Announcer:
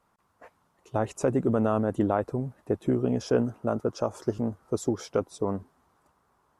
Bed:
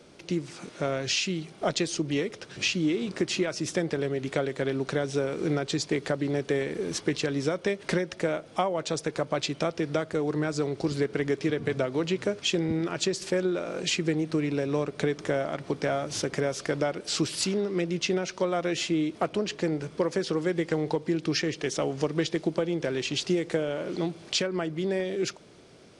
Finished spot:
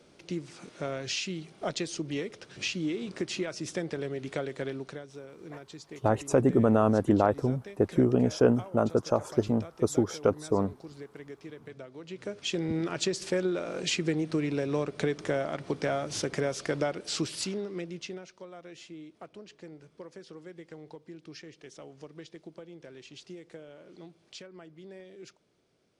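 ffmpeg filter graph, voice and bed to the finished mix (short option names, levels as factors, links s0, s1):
-filter_complex "[0:a]adelay=5100,volume=1.26[s0];[1:a]volume=3.16,afade=t=out:st=4.62:d=0.43:silence=0.251189,afade=t=in:st=12.04:d=0.75:silence=0.16788,afade=t=out:st=16.84:d=1.51:silence=0.141254[s1];[s0][s1]amix=inputs=2:normalize=0"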